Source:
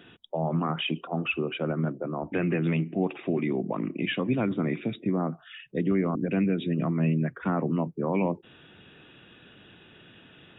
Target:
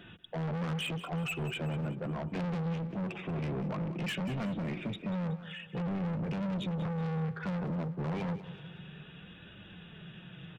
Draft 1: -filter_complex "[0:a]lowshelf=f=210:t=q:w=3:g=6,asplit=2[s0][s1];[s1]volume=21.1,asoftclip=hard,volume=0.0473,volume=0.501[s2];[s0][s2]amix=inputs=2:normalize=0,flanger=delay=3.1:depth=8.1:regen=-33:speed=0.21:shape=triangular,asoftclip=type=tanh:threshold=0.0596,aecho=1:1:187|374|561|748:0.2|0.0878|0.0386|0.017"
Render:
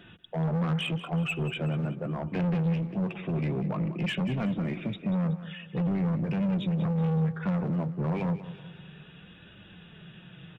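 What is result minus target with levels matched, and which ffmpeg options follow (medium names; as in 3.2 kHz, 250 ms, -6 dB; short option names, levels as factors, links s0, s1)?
saturation: distortion -4 dB
-filter_complex "[0:a]lowshelf=f=210:t=q:w=3:g=6,asplit=2[s0][s1];[s1]volume=21.1,asoftclip=hard,volume=0.0473,volume=0.501[s2];[s0][s2]amix=inputs=2:normalize=0,flanger=delay=3.1:depth=8.1:regen=-33:speed=0.21:shape=triangular,asoftclip=type=tanh:threshold=0.0237,aecho=1:1:187|374|561|748:0.2|0.0878|0.0386|0.017"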